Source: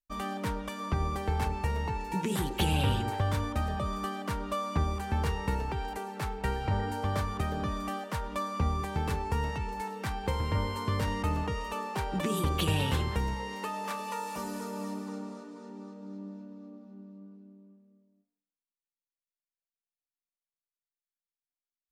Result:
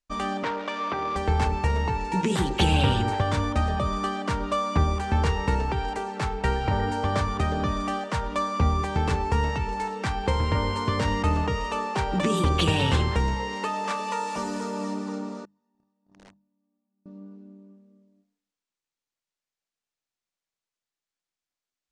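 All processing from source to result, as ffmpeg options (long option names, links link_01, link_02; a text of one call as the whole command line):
ffmpeg -i in.wav -filter_complex "[0:a]asettb=1/sr,asplit=3[link_01][link_02][link_03];[link_01]atrim=end=0.434[link_04];[link_02]atrim=start=0.43:end=1.16,asetpts=PTS-STARTPTS,afade=type=in:duration=0.004:curve=qsin,afade=type=out:start_time=0.726:duration=0.004:curve=qsin,aeval=exprs='val(0)+0.5*0.00944*sgn(val(0))':channel_layout=same,highpass=350,lowpass=3800[link_05];[link_03]atrim=start=1.156[link_06];[link_04][link_05]acrossfade=duration=0.004:curve1=hsin:curve2=qsin[link_07];[link_07][link_06]acrossfade=duration=0.004:curve1=qsin:curve2=hsin,asettb=1/sr,asplit=3[link_08][link_09][link_10];[link_08]atrim=end=15.454[link_11];[link_09]atrim=start=15.45:end=17.06,asetpts=PTS-STARTPTS,afade=type=in:duration=0.004:curve=qsin,afade=type=out:start_time=1.606:duration=0.004:curve=qsin,agate=range=-37dB:threshold=-39dB:ratio=16:release=100:detection=peak,aecho=1:1:1.1:0.56,atrim=end_sample=71001,aeval=exprs='(mod(376*val(0)+1,2)-1)/376':channel_layout=same[link_12];[link_10]atrim=start=17.056[link_13];[link_11][link_12]acrossfade=duration=0.004:curve1=hsin:curve2=qsin[link_14];[link_14][link_13]acrossfade=duration=0.004:curve1=qsin:curve2=hsin,lowpass=frequency=8000:width=0.5412,lowpass=frequency=8000:width=1.3066,bandreject=frequency=50:width_type=h:width=6,bandreject=frequency=100:width_type=h:width=6,bandreject=frequency=150:width_type=h:width=6,bandreject=frequency=200:width_type=h:width=6,volume=7dB" out.wav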